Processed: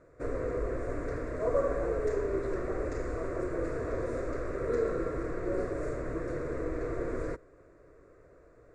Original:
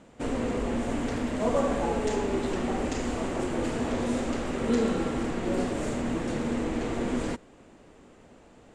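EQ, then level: low-pass 1.5 kHz 6 dB/octave; static phaser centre 830 Hz, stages 6; 0.0 dB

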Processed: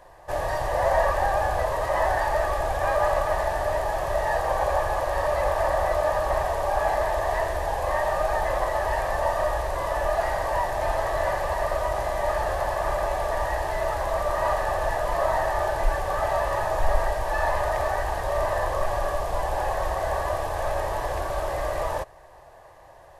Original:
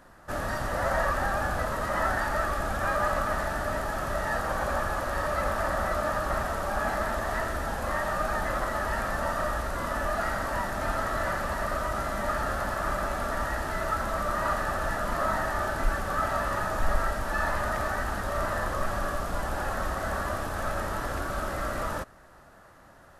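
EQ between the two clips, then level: bass shelf 360 Hz +3.5 dB; peaking EQ 1.2 kHz +14.5 dB 1.8 oct; static phaser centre 560 Hz, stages 4; 0.0 dB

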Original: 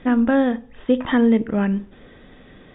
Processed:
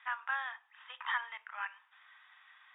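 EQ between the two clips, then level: steep high-pass 940 Hz 48 dB/octave; distance through air 250 m; -4.0 dB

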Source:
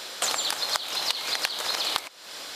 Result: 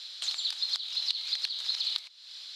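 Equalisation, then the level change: band-pass filter 4 kHz, Q 4; 0.0 dB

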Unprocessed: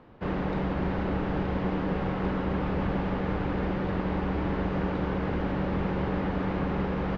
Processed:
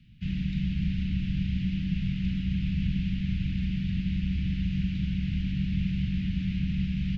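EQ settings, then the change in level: elliptic band-stop 180–2600 Hz, stop band 60 dB; +4.0 dB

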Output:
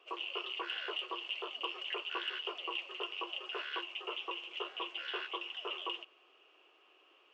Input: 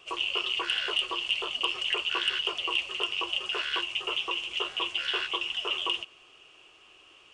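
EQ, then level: high-pass 320 Hz 24 dB/octave; tape spacing loss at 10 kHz 27 dB; -3.5 dB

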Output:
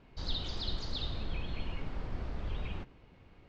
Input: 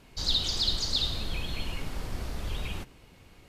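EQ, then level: distance through air 140 m; treble shelf 3.8 kHz -10 dB; -3.0 dB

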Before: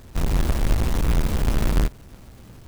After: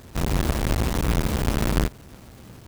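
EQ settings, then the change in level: high-pass 87 Hz 6 dB/octave; +2.5 dB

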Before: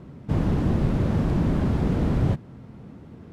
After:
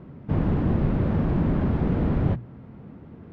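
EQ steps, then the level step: low-pass 2.6 kHz 12 dB/octave; hum notches 60/120 Hz; 0.0 dB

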